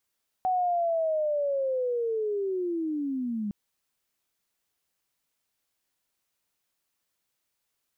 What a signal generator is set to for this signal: chirp linear 750 Hz -> 200 Hz -22.5 dBFS -> -28 dBFS 3.06 s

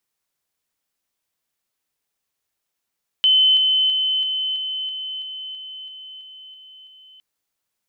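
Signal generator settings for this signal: level ladder 3050 Hz -11.5 dBFS, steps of -3 dB, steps 12, 0.33 s 0.00 s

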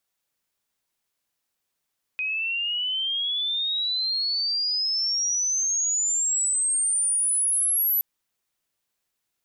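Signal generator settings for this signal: chirp logarithmic 2500 Hz -> 12000 Hz -24.5 dBFS -> -19.5 dBFS 5.82 s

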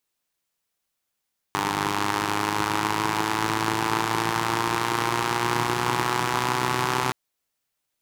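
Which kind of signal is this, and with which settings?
four-cylinder engine model, changing speed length 5.57 s, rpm 3000, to 3800, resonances 160/330/910 Hz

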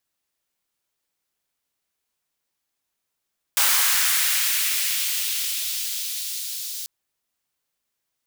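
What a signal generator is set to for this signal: swept filtered noise white, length 3.29 s highpass, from 1000 Hz, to 4400 Hz, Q 1.3, linear, gain ramp -14 dB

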